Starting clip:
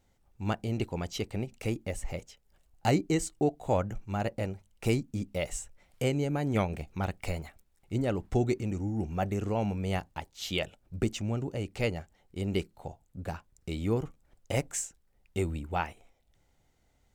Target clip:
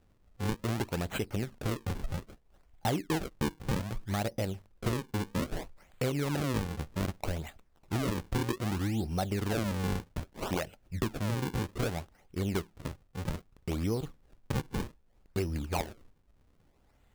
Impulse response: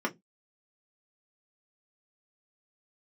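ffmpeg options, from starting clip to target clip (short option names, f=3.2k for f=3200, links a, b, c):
-af "acrusher=samples=39:mix=1:aa=0.000001:lfo=1:lforange=62.4:lforate=0.63,acompressor=threshold=-32dB:ratio=4,volume=3.5dB"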